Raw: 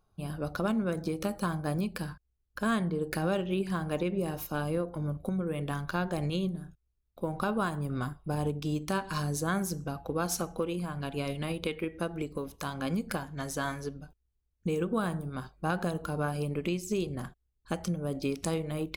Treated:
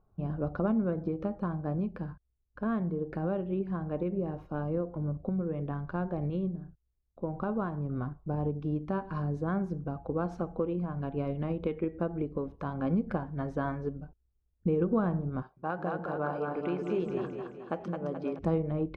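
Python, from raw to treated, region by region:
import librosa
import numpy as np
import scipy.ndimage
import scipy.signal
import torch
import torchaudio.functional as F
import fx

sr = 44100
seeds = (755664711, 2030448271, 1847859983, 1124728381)

y = fx.chain(x, sr, fx.highpass(hz=720.0, slope=6),
    fx.echo_split(split_hz=310.0, low_ms=146, high_ms=215, feedback_pct=52, wet_db=-3.5), at=(15.42, 18.39))
y = scipy.signal.sosfilt(scipy.signal.bessel(2, 830.0, 'lowpass', norm='mag', fs=sr, output='sos'), y)
y = fx.rider(y, sr, range_db=10, speed_s=2.0)
y = y * librosa.db_to_amplitude(1.0)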